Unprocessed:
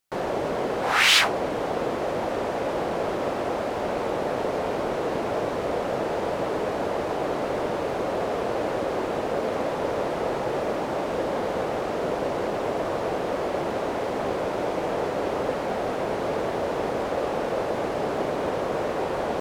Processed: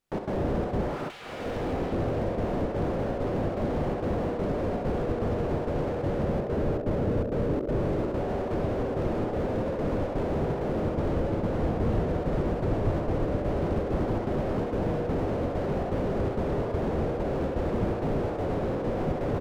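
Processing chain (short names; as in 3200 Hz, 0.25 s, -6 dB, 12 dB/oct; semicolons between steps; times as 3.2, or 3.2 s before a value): 6.17–7.8 spectral gain 670–12000 Hz -25 dB; 10.75–13.39 low shelf 130 Hz +8 dB; reverb RT60 3.5 s, pre-delay 8 ms, DRR -3.5 dB; step gate "xx.xxxx.x" 164 bpm -60 dB; notches 60/120/180/240/300/360 Hz; resonator 240 Hz, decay 0.38 s, harmonics all, mix 40%; feedback echo 67 ms, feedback 60%, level -12 dB; negative-ratio compressor -26 dBFS, ratio -0.5; tilt -2.5 dB/oct; slew limiter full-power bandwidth 16 Hz; gain +1.5 dB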